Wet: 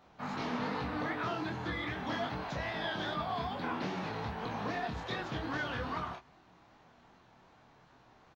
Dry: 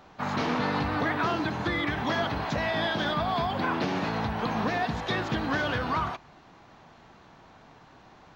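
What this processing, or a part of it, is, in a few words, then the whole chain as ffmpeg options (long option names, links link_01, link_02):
double-tracked vocal: -filter_complex "[0:a]asplit=2[link_01][link_02];[link_02]adelay=16,volume=-8dB[link_03];[link_01][link_03]amix=inputs=2:normalize=0,flanger=delay=22.5:depth=7.2:speed=2.5,volume=-6dB"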